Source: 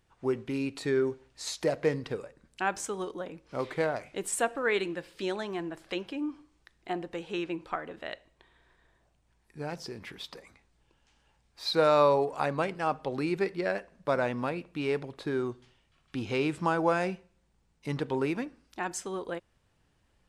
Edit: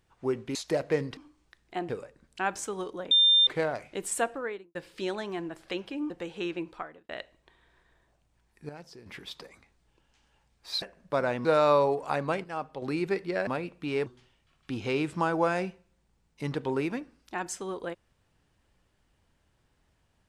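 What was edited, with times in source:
0.55–1.48 cut
3.32–3.68 bleep 3600 Hz -17 dBFS
4.42–4.96 studio fade out
6.31–7.03 move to 2.1
7.55–8.02 fade out
9.62–9.99 gain -9 dB
12.74–13.12 gain -5.5 dB
13.77–14.4 move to 11.75
14.99–15.51 cut

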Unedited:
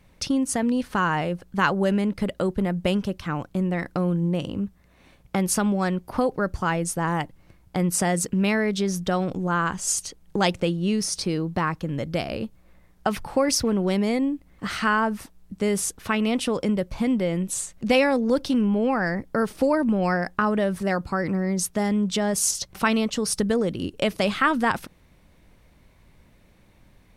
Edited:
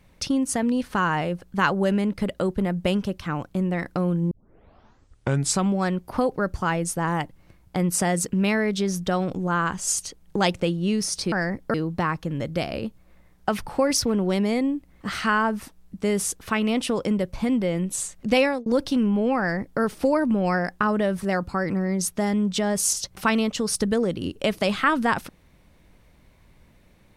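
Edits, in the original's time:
4.31 tape start 1.43 s
17.93–18.24 fade out equal-power
18.97–19.39 copy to 11.32

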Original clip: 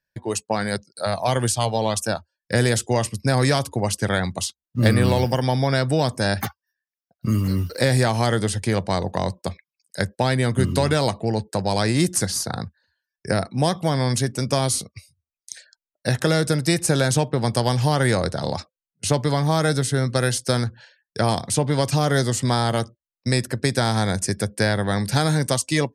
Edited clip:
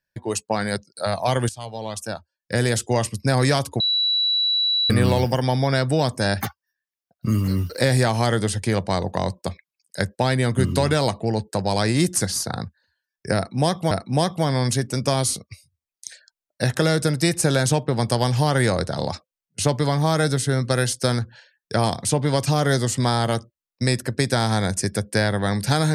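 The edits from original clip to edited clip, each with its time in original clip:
1.49–2.96 fade in, from -15.5 dB
3.8–4.9 bleep 3930 Hz -17.5 dBFS
13.36–13.91 loop, 2 plays

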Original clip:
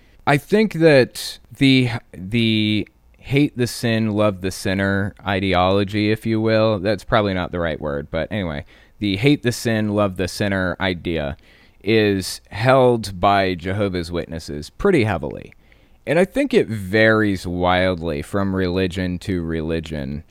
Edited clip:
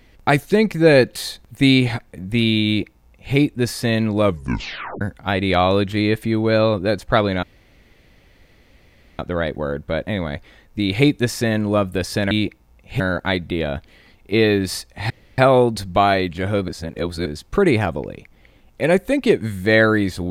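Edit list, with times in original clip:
2.66–3.35 copy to 10.55
4.23 tape stop 0.78 s
7.43 insert room tone 1.76 s
12.65 insert room tone 0.28 s
13.95–14.53 reverse

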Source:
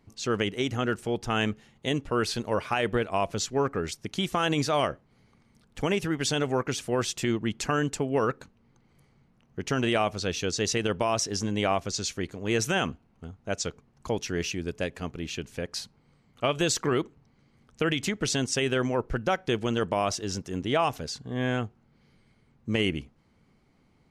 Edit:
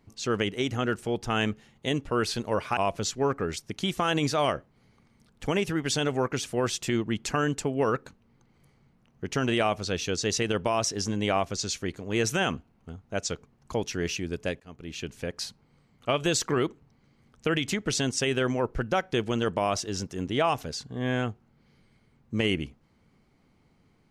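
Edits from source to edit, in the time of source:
2.77–3.12 cut
14.95–15.44 fade in, from -23.5 dB

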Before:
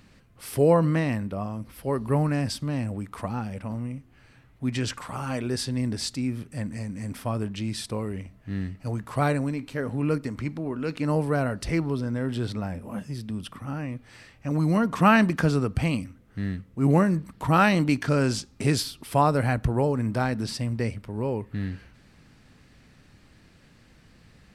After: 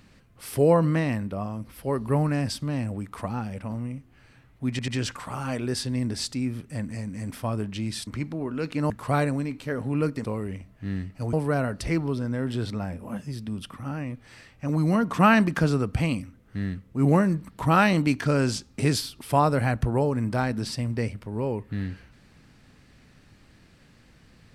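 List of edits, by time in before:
4.7 stutter 0.09 s, 3 plays
7.89–8.98 swap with 10.32–11.15

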